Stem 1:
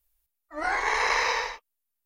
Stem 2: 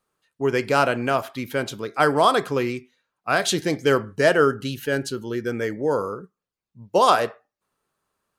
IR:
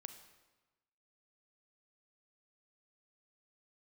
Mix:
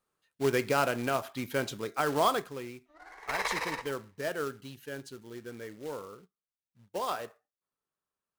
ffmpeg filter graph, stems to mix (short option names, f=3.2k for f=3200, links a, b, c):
-filter_complex "[0:a]adynamicsmooth=sensitivity=7.5:basefreq=1k,tremolo=f=18:d=0.7,adelay=2350,volume=-5.5dB,asplit=2[a][b];[b]volume=-21dB[c];[1:a]acrusher=bits=3:mode=log:mix=0:aa=0.000001,volume=-6dB,afade=t=out:st=2.25:d=0.25:silence=0.281838,asplit=2[d][e];[e]apad=whole_len=194196[f];[a][f]sidechaingate=range=-17dB:threshold=-47dB:ratio=16:detection=peak[g];[c]aecho=0:1:79|158|237|316|395|474|553:1|0.49|0.24|0.118|0.0576|0.0282|0.0138[h];[g][d][h]amix=inputs=3:normalize=0,alimiter=limit=-15.5dB:level=0:latency=1:release=232"